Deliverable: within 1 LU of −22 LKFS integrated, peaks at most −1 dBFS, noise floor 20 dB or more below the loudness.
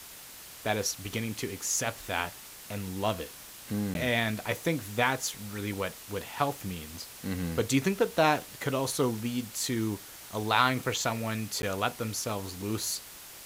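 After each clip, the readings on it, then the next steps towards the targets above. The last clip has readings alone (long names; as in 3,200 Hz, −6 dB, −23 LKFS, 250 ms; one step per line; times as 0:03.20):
number of dropouts 2; longest dropout 11 ms; background noise floor −47 dBFS; target noise floor −51 dBFS; integrated loudness −31.0 LKFS; sample peak −8.0 dBFS; target loudness −22.0 LKFS
→ repair the gap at 0:03.94/0:11.62, 11 ms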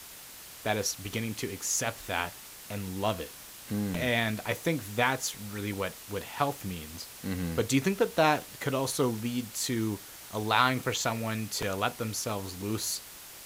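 number of dropouts 0; background noise floor −47 dBFS; target noise floor −51 dBFS
→ noise reduction from a noise print 6 dB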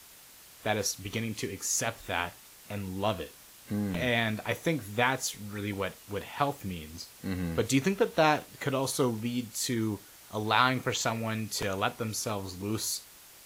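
background noise floor −53 dBFS; integrated loudness −31.0 LKFS; sample peak −8.0 dBFS; target loudness −22.0 LKFS
→ level +9 dB
brickwall limiter −1 dBFS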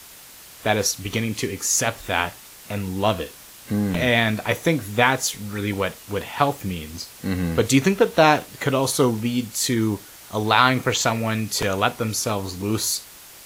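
integrated loudness −22.0 LKFS; sample peak −1.0 dBFS; background noise floor −44 dBFS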